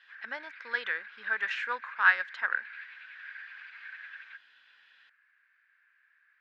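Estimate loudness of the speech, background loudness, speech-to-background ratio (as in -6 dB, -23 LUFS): -30.0 LUFS, -46.0 LUFS, 16.0 dB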